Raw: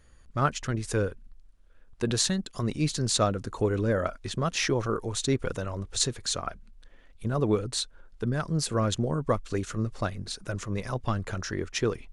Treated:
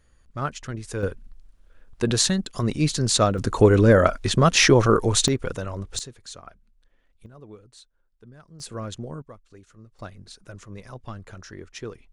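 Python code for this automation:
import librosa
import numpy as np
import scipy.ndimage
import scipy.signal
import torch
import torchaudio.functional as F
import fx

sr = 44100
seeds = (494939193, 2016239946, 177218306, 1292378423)

y = fx.gain(x, sr, db=fx.steps((0.0, -3.0), (1.03, 5.0), (3.38, 11.0), (5.28, 2.0), (5.99, -10.5), (7.26, -19.5), (8.6, -7.0), (9.22, -19.0), (9.99, -8.5)))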